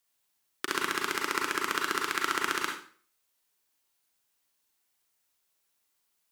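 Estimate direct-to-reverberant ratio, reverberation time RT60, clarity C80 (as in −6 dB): 0.0 dB, 0.45 s, 9.0 dB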